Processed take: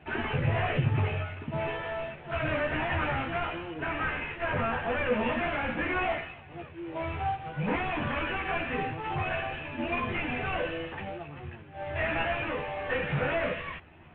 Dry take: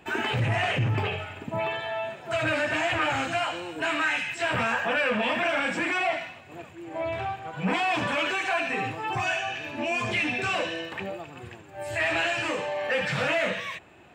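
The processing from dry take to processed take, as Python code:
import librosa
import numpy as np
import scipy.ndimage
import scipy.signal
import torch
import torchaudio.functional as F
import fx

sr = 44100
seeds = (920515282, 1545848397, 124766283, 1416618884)

y = fx.cvsd(x, sr, bps=16000)
y = fx.low_shelf(y, sr, hz=220.0, db=7.5)
y = fx.chorus_voices(y, sr, voices=4, hz=0.2, base_ms=13, depth_ms=1.4, mix_pct=45)
y = fx.air_absorb(y, sr, metres=120.0, at=(3.74, 5.13))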